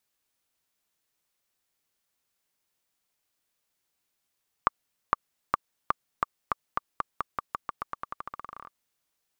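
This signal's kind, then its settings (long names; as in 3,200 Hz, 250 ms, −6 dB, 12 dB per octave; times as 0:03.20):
bouncing ball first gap 0.46 s, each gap 0.89, 1,170 Hz, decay 19 ms −6 dBFS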